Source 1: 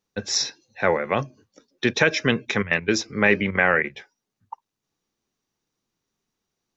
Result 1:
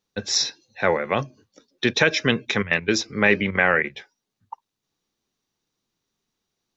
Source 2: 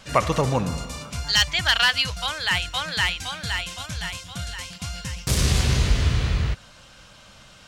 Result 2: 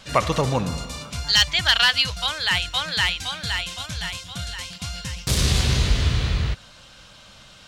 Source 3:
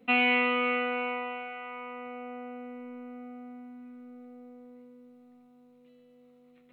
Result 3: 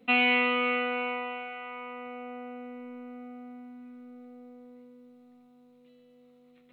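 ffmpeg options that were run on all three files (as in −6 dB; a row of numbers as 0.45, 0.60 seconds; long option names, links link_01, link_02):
-af "equalizer=frequency=3800:width_type=o:width=0.69:gain=4.5"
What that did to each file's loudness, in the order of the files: +0.5, +1.5, +1.0 LU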